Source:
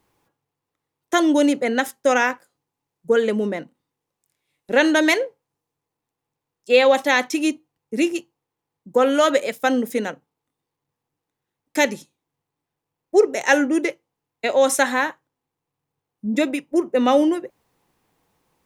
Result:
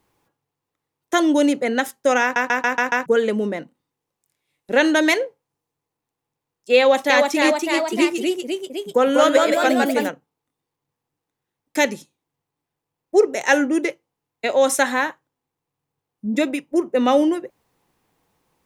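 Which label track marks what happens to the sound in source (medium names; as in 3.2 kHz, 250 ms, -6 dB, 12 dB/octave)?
2.220000	2.220000	stutter in place 0.14 s, 6 plays
6.780000	10.090000	ever faster or slower copies 318 ms, each echo +1 st, echoes 3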